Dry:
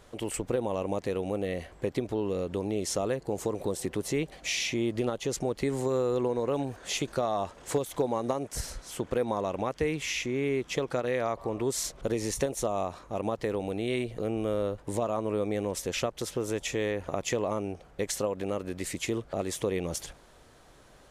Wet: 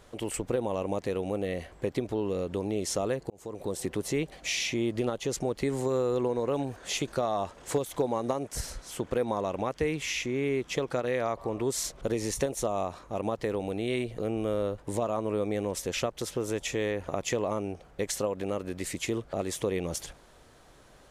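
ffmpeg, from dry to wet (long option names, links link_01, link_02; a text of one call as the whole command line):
ffmpeg -i in.wav -filter_complex "[0:a]asplit=2[link_01][link_02];[link_01]atrim=end=3.3,asetpts=PTS-STARTPTS,afade=type=out:start_time=3.296:duration=0.004:curve=hsin[link_03];[link_02]atrim=start=3.3,asetpts=PTS-STARTPTS,afade=type=in:duration=0.5[link_04];[link_03][link_04]concat=n=2:v=0:a=1" out.wav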